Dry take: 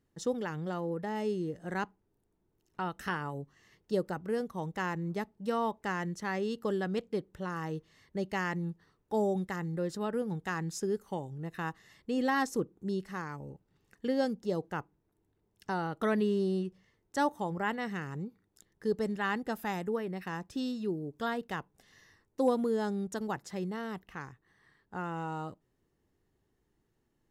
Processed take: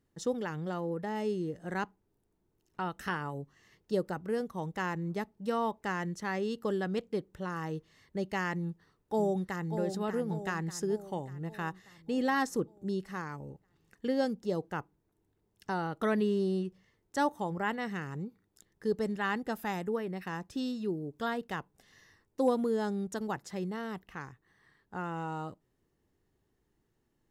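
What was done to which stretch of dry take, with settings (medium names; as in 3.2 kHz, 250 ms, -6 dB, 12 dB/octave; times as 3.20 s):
8.59–9.76 s: echo throw 590 ms, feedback 55%, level -8 dB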